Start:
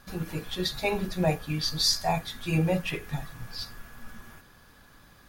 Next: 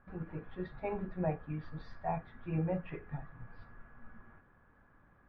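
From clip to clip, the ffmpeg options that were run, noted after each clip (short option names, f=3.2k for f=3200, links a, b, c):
-af "lowpass=f=1.8k:w=0.5412,lowpass=f=1.8k:w=1.3066,volume=-8.5dB"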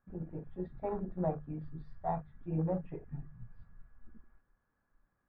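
-af "afwtdn=0.00631,bandreject=f=50:t=h:w=6,bandreject=f=100:t=h:w=6,bandreject=f=150:t=h:w=6,volume=1dB"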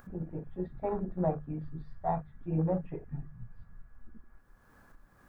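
-af "acompressor=mode=upward:threshold=-46dB:ratio=2.5,volume=3.5dB"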